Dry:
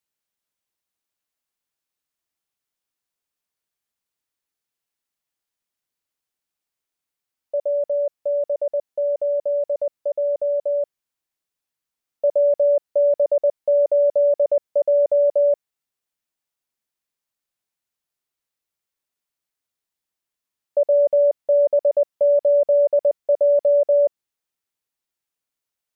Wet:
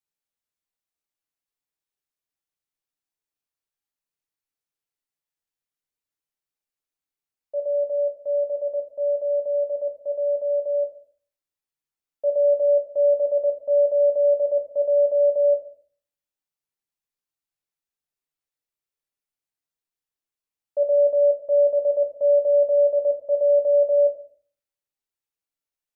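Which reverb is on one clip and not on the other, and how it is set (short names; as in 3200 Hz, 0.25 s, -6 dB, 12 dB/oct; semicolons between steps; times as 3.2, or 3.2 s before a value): shoebox room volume 41 m³, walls mixed, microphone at 0.44 m; gain -8.5 dB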